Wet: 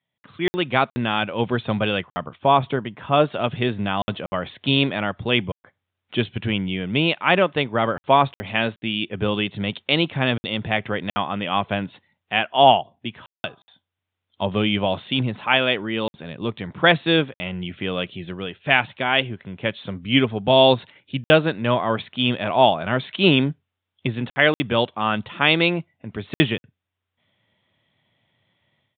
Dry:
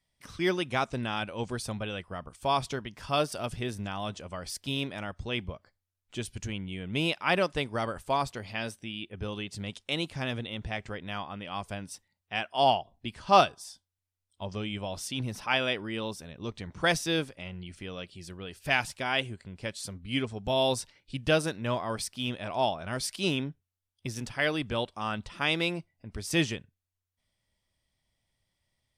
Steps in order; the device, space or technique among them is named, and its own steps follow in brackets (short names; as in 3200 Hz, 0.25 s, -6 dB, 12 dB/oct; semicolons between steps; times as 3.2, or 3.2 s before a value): call with lost packets (HPF 110 Hz 24 dB/oct; downsampling 8000 Hz; AGC gain up to 14.5 dB; packet loss packets of 60 ms random); 2.38–3.24 high shelf 2200 Hz -9.5 dB